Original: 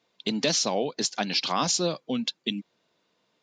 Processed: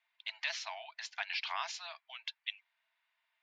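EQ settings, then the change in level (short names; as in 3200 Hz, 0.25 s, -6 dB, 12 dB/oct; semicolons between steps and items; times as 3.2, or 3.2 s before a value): rippled Chebyshev high-pass 640 Hz, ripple 6 dB; synth low-pass 1800 Hz, resonance Q 2; differentiator; +7.0 dB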